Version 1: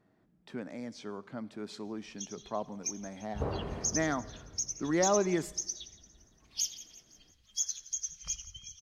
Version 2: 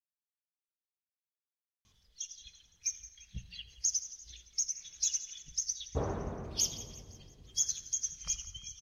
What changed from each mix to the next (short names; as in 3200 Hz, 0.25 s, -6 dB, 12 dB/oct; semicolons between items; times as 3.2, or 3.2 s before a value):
speech: muted; first sound: send +9.5 dB; second sound: entry +2.55 s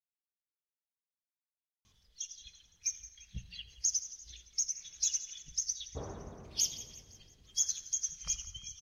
second sound -8.5 dB